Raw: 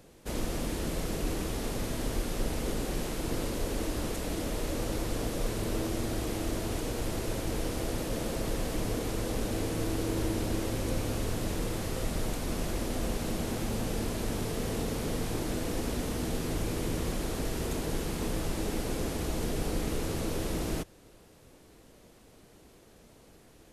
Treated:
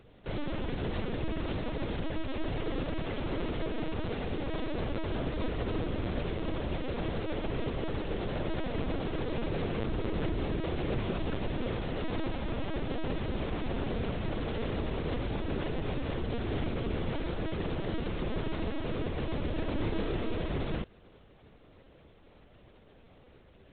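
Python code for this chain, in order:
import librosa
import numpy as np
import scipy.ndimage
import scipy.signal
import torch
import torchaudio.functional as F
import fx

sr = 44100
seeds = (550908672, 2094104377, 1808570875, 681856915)

y = fx.clip_asym(x, sr, top_db=-26.5, bottom_db=-23.0)
y = fx.lpc_vocoder(y, sr, seeds[0], excitation='pitch_kept', order=10)
y = fx.doubler(y, sr, ms=30.0, db=-5.5, at=(19.78, 20.35), fade=0.02)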